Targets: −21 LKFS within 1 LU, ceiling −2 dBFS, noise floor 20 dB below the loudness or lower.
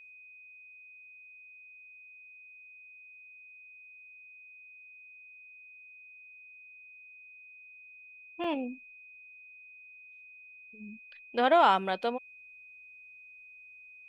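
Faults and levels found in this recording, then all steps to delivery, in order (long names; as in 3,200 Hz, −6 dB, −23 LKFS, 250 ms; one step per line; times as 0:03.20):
number of dropouts 1; longest dropout 3.8 ms; interfering tone 2,500 Hz; level of the tone −50 dBFS; integrated loudness −28.0 LKFS; sample peak −11.5 dBFS; target loudness −21.0 LKFS
→ repair the gap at 0:08.44, 3.8 ms
notch filter 2,500 Hz, Q 30
level +7 dB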